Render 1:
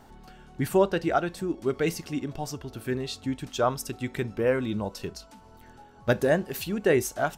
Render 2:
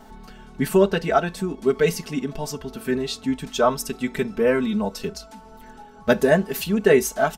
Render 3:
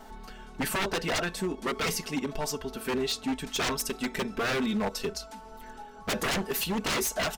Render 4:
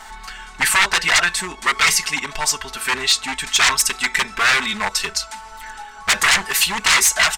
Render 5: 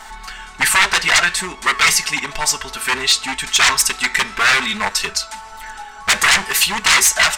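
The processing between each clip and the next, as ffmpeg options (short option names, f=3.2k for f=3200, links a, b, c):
-af "aecho=1:1:4.6:0.95,volume=3dB"
-af "equalizer=f=140:w=0.7:g=-7.5,aeval=exprs='0.0708*(abs(mod(val(0)/0.0708+3,4)-2)-1)':c=same"
-af "equalizer=f=125:t=o:w=1:g=-4,equalizer=f=250:t=o:w=1:g=-9,equalizer=f=500:t=o:w=1:g=-9,equalizer=f=1k:t=o:w=1:g=7,equalizer=f=2k:t=o:w=1:g=11,equalizer=f=4k:t=o:w=1:g=5,equalizer=f=8k:t=o:w=1:g=12,volume=5.5dB"
-af "flanger=delay=7.6:depth=9.7:regen=-88:speed=0.59:shape=triangular,volume=6.5dB"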